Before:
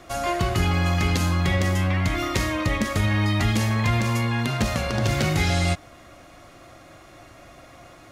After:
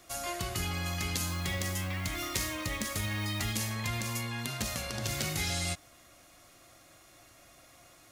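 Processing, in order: 1.29–3.53 s: companding laws mixed up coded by mu; pre-emphasis filter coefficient 0.8

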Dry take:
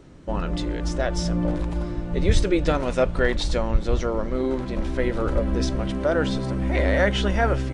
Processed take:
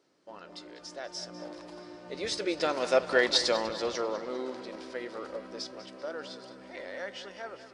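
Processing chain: Doppler pass-by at 3.36 s, 7 m/s, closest 3.6 m; high-pass 400 Hz 12 dB/octave; peaking EQ 4.9 kHz +11 dB 0.46 oct; on a send: tape echo 197 ms, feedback 62%, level -12.5 dB, low-pass 5.8 kHz

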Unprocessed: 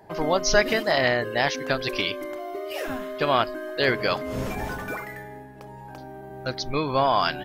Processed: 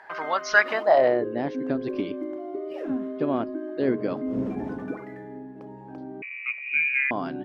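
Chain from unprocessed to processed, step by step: band-pass sweep 1.5 kHz -> 270 Hz, 0.58–1.33 s; 6.22–7.11 s: frequency inversion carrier 2.7 kHz; tape noise reduction on one side only encoder only; trim +7.5 dB

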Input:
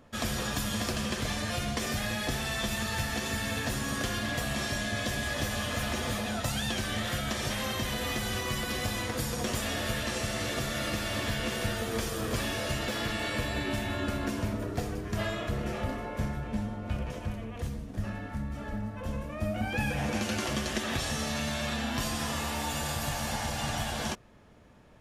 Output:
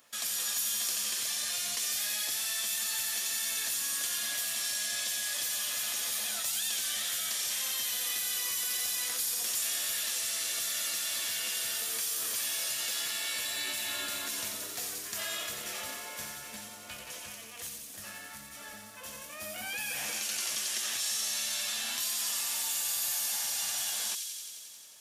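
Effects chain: differentiator; in parallel at -2 dB: compressor with a negative ratio -48 dBFS, ratio -1; on the sum: feedback echo behind a high-pass 89 ms, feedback 79%, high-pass 3.5 kHz, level -4.5 dB; trim +3 dB

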